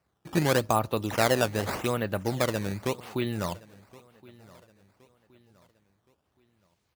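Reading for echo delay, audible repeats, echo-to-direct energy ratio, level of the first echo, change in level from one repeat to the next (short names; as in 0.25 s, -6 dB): 1.07 s, 2, -22.0 dB, -22.5 dB, -8.0 dB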